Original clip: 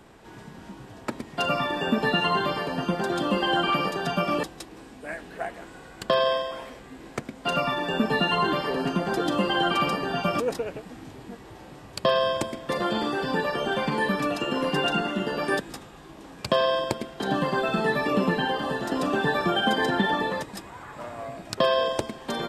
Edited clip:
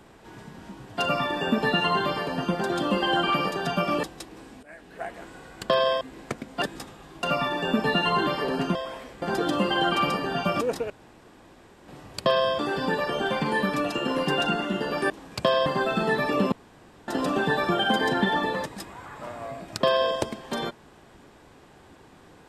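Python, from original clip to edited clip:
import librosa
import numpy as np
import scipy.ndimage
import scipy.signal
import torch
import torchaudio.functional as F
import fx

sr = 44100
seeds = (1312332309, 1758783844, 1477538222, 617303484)

y = fx.edit(x, sr, fx.cut(start_s=0.97, length_s=0.4),
    fx.fade_in_from(start_s=5.03, length_s=0.58, floor_db=-16.5),
    fx.move(start_s=6.41, length_s=0.47, to_s=9.01),
    fx.room_tone_fill(start_s=10.69, length_s=0.98),
    fx.cut(start_s=12.38, length_s=0.67),
    fx.move(start_s=15.56, length_s=0.61, to_s=7.49),
    fx.cut(start_s=16.73, length_s=0.7),
    fx.room_tone_fill(start_s=18.29, length_s=0.56), tone=tone)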